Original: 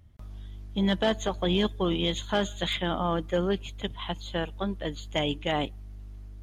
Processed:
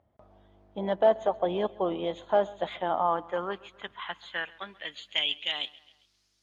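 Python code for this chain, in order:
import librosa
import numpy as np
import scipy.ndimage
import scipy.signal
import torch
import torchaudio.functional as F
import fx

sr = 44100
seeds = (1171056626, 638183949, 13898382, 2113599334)

p1 = fx.filter_sweep_bandpass(x, sr, from_hz=670.0, to_hz=5300.0, start_s=2.61, end_s=6.29, q=2.3)
p2 = p1 + fx.echo_feedback(p1, sr, ms=134, feedback_pct=50, wet_db=-22.0, dry=0)
y = p2 * 10.0 ** (7.0 / 20.0)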